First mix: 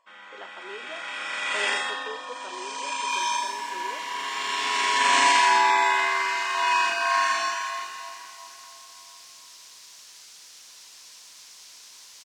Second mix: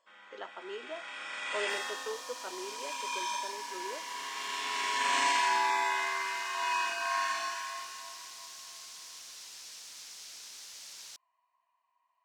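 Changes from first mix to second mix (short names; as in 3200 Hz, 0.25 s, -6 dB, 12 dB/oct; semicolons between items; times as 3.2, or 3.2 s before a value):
first sound -9.0 dB; second sound: entry -1.40 s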